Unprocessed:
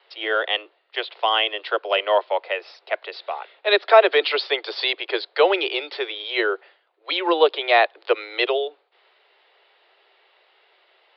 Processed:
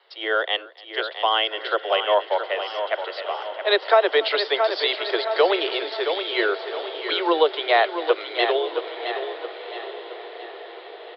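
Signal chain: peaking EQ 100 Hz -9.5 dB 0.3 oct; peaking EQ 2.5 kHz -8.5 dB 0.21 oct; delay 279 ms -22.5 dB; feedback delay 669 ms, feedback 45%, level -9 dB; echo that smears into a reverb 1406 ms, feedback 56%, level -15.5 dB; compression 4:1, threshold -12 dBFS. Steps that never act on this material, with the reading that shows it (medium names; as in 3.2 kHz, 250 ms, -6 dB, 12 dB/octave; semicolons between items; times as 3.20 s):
peaking EQ 100 Hz: input has nothing below 290 Hz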